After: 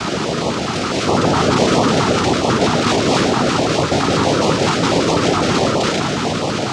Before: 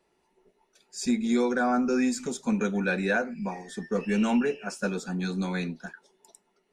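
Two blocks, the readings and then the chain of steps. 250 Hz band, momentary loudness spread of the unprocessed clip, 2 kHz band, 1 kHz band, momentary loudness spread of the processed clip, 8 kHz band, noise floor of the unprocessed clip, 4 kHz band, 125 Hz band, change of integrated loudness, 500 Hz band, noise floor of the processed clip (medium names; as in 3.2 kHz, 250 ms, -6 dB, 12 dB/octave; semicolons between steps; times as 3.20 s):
+9.5 dB, 11 LU, +10.5 dB, +17.5 dB, 5 LU, +16.0 dB, -72 dBFS, +23.0 dB, +16.5 dB, +12.0 dB, +14.5 dB, -21 dBFS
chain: spectral levelling over time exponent 0.2; waveshaping leveller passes 3; noise-vocoded speech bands 2; low-pass 4.6 kHz 12 dB/octave; peaking EQ 1.3 kHz +8.5 dB 0.31 oct; on a send: echo whose repeats swap between lows and highs 125 ms, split 850 Hz, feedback 51%, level -3 dB; on the sum: step-sequenced notch 12 Hz 540–1500 Hz; trim -3 dB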